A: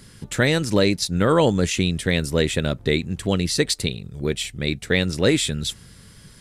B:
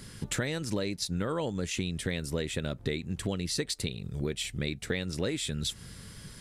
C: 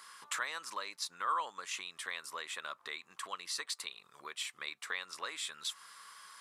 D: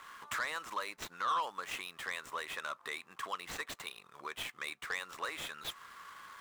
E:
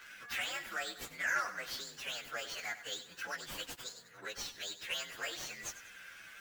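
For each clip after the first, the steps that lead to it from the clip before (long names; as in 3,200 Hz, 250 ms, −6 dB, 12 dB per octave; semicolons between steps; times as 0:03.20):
downward compressor 6 to 1, threshold −29 dBFS, peak gain reduction 15.5 dB
high-pass with resonance 1,100 Hz, resonance Q 7.1; level −5.5 dB
running median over 9 samples; soft clipping −33 dBFS, distortion −12 dB; level +5 dB
partials spread apart or drawn together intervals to 123%; feedback echo at a low word length 97 ms, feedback 55%, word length 10 bits, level −12.5 dB; level +4 dB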